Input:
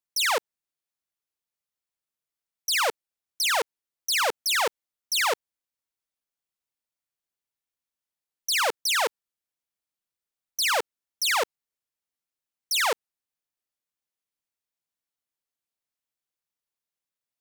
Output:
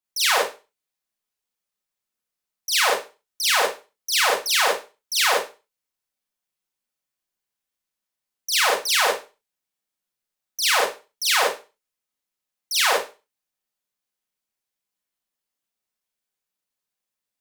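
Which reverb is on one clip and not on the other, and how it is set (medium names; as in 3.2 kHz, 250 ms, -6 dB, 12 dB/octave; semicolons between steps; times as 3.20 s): Schroeder reverb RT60 0.3 s, combs from 30 ms, DRR -5 dB; trim -1.5 dB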